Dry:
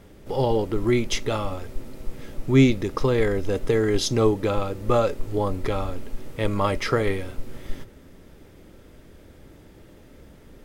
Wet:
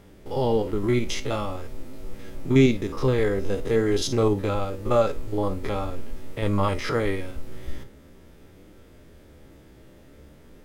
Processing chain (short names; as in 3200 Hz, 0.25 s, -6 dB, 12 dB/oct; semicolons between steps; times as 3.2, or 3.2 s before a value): stepped spectrum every 50 ms; flange 0.46 Hz, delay 9.8 ms, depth 6.5 ms, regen +65%; gain +4 dB